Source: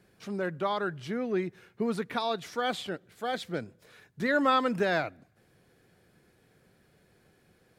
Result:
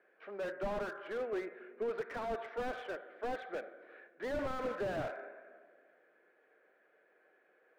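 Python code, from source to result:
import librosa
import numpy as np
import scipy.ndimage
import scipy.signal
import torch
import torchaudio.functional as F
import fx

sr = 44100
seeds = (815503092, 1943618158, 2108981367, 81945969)

y = fx.cabinet(x, sr, low_hz=390.0, low_slope=24, high_hz=2300.0, hz=(590.0, 900.0, 1600.0), db=(4, -3, 5))
y = fx.room_shoebox(y, sr, seeds[0], volume_m3=1900.0, walls='mixed', distance_m=0.54)
y = fx.slew_limit(y, sr, full_power_hz=17.0)
y = y * librosa.db_to_amplitude(-3.0)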